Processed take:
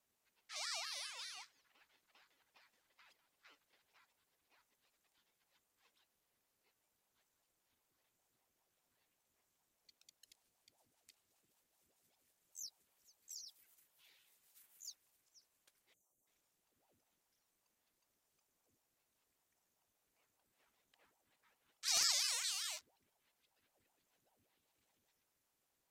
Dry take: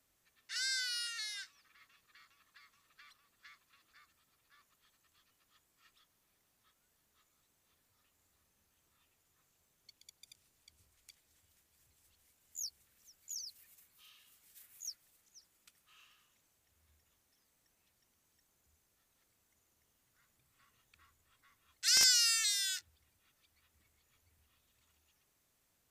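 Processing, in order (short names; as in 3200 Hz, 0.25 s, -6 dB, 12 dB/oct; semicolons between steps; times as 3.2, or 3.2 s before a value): spectral delete 15.93–16.27, 540–6300 Hz; ring modulator with a swept carrier 520 Hz, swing 70%, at 5.1 Hz; gain -4.5 dB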